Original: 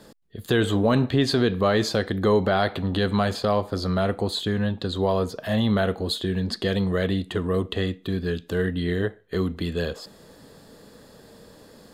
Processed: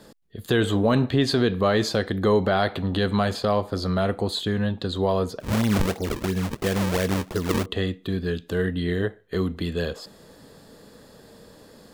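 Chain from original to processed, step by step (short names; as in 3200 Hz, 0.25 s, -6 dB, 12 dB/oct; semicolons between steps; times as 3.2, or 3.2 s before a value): 5.4–7.66 decimation with a swept rate 36×, swing 160% 2.9 Hz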